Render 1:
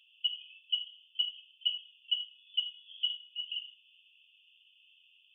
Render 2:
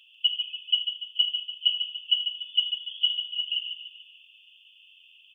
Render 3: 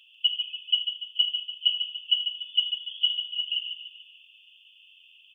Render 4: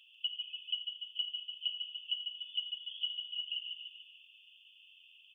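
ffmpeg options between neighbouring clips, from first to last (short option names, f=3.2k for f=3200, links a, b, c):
-af "aecho=1:1:145|290|435|580|725:0.422|0.19|0.0854|0.0384|0.0173,volume=8dB"
-af anull
-af "acompressor=threshold=-34dB:ratio=2,volume=-5dB"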